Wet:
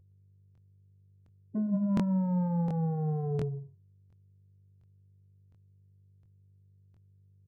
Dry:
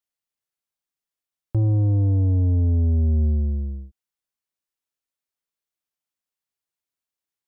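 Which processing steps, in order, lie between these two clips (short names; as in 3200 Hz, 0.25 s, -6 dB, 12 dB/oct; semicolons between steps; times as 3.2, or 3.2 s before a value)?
gate -23 dBFS, range -57 dB; band shelf 520 Hz -15 dB 1.2 oct; resonator 500 Hz, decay 0.26 s, harmonics all, mix 90%; de-hum 53.26 Hz, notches 3; in parallel at -8 dB: sine folder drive 13 dB, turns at -31 dBFS; on the sum: small resonant body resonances 290 Hz, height 17 dB, ringing for 20 ms; hum 50 Hz, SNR 24 dB; formant-preserving pitch shift +11.5 st; echo 0.116 s -13.5 dB; crackling interface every 0.71 s, samples 1024, repeat, from 0.53; decimation joined by straight lines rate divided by 3×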